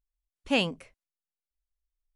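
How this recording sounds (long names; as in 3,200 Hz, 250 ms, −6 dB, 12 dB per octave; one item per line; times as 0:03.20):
background noise floor −94 dBFS
spectral slope −2.5 dB per octave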